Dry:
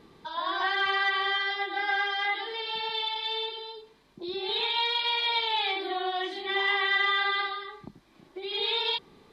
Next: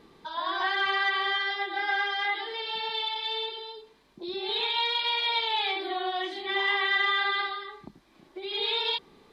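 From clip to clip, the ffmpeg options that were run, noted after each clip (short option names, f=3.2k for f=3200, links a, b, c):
-af "equalizer=f=110:w=1.1:g=-5"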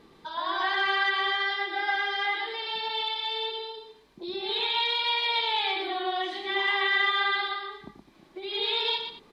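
-af "aecho=1:1:119|211:0.422|0.141"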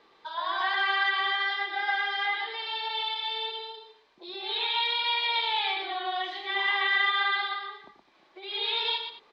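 -filter_complex "[0:a]acrossover=split=460 5900:gain=0.112 1 0.0631[a][b][c];[a][b][c]amix=inputs=3:normalize=0"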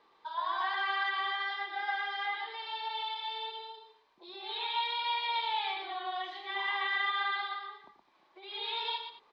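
-af "equalizer=f=980:w=2.3:g=7,volume=-8dB"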